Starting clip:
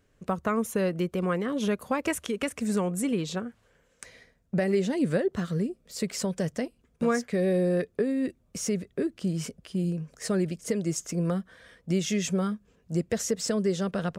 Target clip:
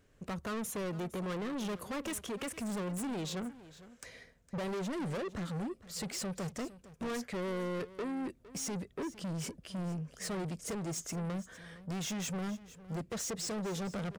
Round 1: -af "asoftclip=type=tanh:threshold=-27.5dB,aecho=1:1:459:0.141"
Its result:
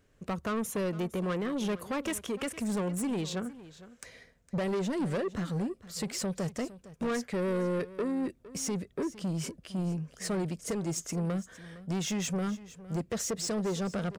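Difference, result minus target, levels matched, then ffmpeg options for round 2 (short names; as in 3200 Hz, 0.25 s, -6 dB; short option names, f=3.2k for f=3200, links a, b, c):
soft clip: distortion -5 dB
-af "asoftclip=type=tanh:threshold=-35dB,aecho=1:1:459:0.141"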